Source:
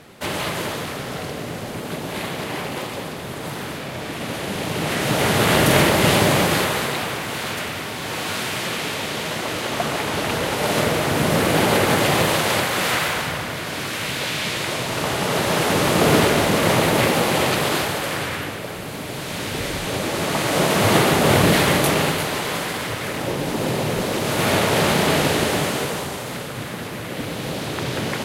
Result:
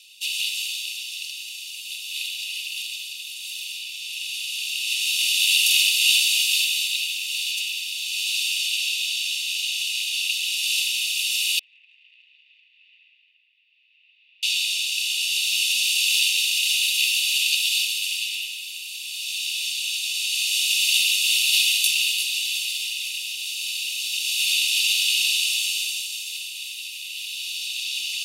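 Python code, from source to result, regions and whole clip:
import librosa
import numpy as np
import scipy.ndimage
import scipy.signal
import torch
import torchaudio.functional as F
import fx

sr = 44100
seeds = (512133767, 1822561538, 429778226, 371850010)

y = fx.chain(x, sr, fx.lowpass(hz=1100.0, slope=24),
    fx.doppler_dist(depth_ms=0.22), at=(11.59, 14.43))
y = scipy.signal.sosfilt(scipy.signal.butter(16, 2500.0, 'highpass', fs=sr, output='sos'), y)
y = fx.high_shelf(y, sr, hz=9000.0, db=-6.5)
y = y + 0.65 * np.pad(y, (int(1.1 * sr / 1000.0), 0))[:len(y)]
y = y * librosa.db_to_amplitude(5.0)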